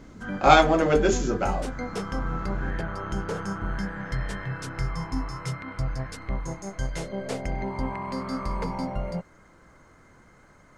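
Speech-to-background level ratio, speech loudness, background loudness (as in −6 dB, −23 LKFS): 11.5 dB, −21.0 LKFS, −32.5 LKFS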